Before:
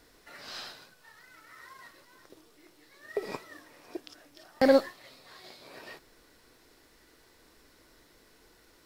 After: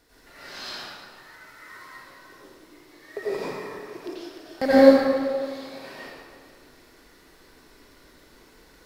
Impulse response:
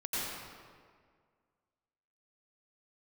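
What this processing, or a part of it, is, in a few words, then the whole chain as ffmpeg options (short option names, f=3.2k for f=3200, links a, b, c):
stairwell: -filter_complex "[1:a]atrim=start_sample=2205[a];[0:a][a]afir=irnorm=-1:irlink=0,volume=1.5dB"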